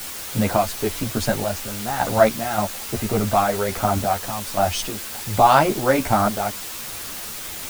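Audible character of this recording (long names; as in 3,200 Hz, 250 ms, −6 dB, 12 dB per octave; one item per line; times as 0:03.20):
sample-and-hold tremolo, depth 75%
a quantiser's noise floor 6 bits, dither triangular
a shimmering, thickened sound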